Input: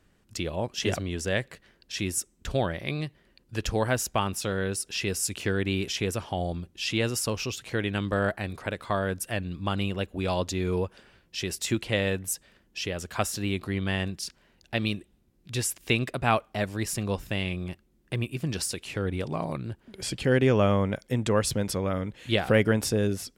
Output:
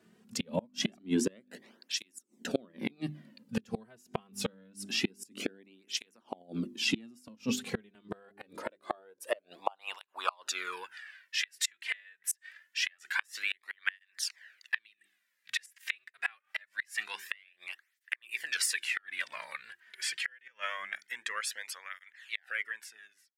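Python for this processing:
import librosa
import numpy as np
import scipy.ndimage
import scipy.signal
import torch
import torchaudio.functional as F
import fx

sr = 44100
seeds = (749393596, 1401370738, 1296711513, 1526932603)

y = fx.fade_out_tail(x, sr, length_s=4.37)
y = fx.hum_notches(y, sr, base_hz=50, count=8)
y = fx.filter_sweep_highpass(y, sr, from_hz=230.0, to_hz=1800.0, start_s=7.94, end_s=10.98, q=5.4)
y = fx.gate_flip(y, sr, shuts_db=-17.0, range_db=-32)
y = fx.flanger_cancel(y, sr, hz=0.25, depth_ms=3.8)
y = y * librosa.db_to_amplitude(3.0)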